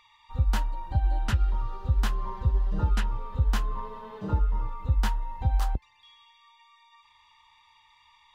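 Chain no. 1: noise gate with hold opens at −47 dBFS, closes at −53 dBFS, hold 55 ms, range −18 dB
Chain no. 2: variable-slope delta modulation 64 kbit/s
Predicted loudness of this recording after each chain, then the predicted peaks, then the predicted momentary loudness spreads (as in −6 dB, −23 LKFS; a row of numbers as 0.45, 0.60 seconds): −29.5, −29.5 LKFS; −14.0, −14.0 dBFS; 6, 6 LU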